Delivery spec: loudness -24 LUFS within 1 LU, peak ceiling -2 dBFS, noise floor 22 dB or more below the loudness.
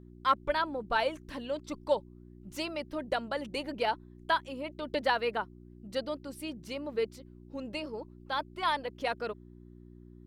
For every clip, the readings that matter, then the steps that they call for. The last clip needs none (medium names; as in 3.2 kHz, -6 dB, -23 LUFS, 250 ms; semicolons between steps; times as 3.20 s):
hum 60 Hz; highest harmonic 360 Hz; hum level -50 dBFS; loudness -34.0 LUFS; peak level -13.0 dBFS; loudness target -24.0 LUFS
-> de-hum 60 Hz, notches 6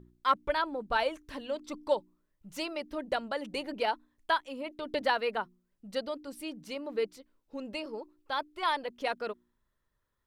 hum not found; loudness -34.0 LUFS; peak level -13.0 dBFS; loudness target -24.0 LUFS
-> trim +10 dB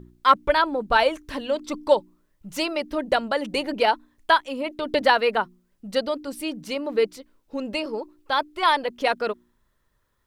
loudness -24.0 LUFS; peak level -3.0 dBFS; noise floor -70 dBFS